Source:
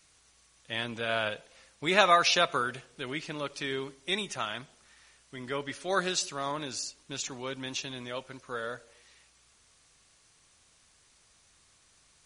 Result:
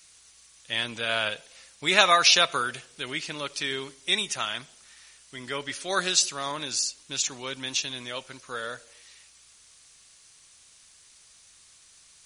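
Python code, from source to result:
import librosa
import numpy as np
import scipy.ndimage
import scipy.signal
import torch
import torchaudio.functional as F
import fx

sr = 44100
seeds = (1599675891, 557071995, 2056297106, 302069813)

y = fx.high_shelf(x, sr, hz=2000.0, db=11.5)
y = y * 10.0 ** (-1.0 / 20.0)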